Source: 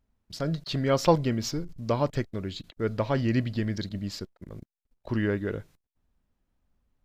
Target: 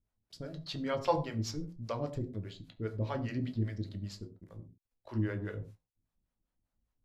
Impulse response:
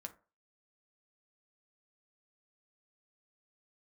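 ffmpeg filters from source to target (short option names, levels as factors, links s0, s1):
-filter_complex "[0:a]acrossover=split=450[s0][s1];[s0]aeval=exprs='val(0)*(1-1/2+1/2*cos(2*PI*5*n/s))':c=same[s2];[s1]aeval=exprs='val(0)*(1-1/2-1/2*cos(2*PI*5*n/s))':c=same[s3];[s2][s3]amix=inputs=2:normalize=0[s4];[1:a]atrim=start_sample=2205,atrim=end_sample=3528,asetrate=23814,aresample=44100[s5];[s4][s5]afir=irnorm=-1:irlink=0,volume=0.631"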